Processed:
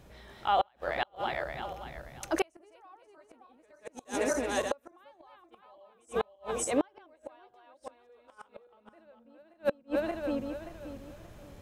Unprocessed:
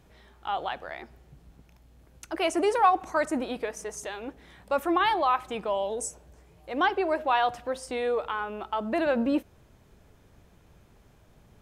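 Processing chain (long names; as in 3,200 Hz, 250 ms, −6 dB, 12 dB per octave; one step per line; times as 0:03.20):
feedback delay that plays each chunk backwards 289 ms, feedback 51%, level 0 dB
gate with flip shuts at −19 dBFS, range −39 dB
hollow resonant body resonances 570/4,000 Hz, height 6 dB
level +3 dB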